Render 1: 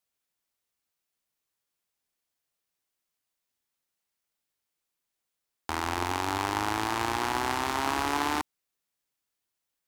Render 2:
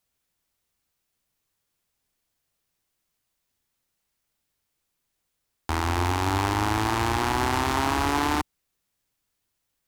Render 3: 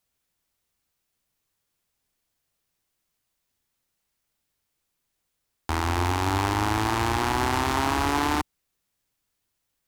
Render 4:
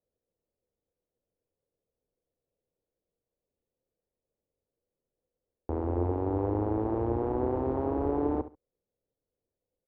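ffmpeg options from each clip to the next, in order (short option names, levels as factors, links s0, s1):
-af "lowshelf=f=170:g=11.5,alimiter=limit=0.158:level=0:latency=1:release=16,volume=1.88"
-af anull
-af "lowpass=f=500:t=q:w=4.9,aecho=1:1:69|138:0.2|0.0399,volume=0.531"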